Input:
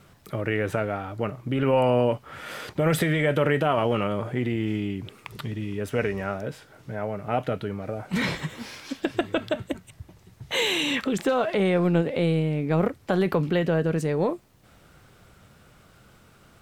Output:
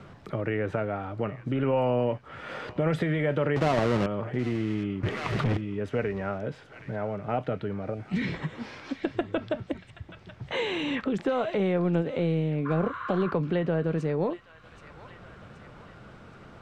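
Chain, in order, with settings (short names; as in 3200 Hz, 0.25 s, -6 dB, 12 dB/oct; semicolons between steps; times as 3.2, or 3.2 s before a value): 3.56–4.06 half-waves squared off; 7.94–8.34 band shelf 860 Hz -12 dB; 12.68–13.29 spectral repair 930–2200 Hz after; thin delay 0.775 s, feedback 44%, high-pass 1500 Hz, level -15 dB; 5.03–5.57 sample leveller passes 5; LPF 5600 Hz 12 dB/oct; high shelf 2500 Hz -9 dB; three-band squash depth 40%; gain -3 dB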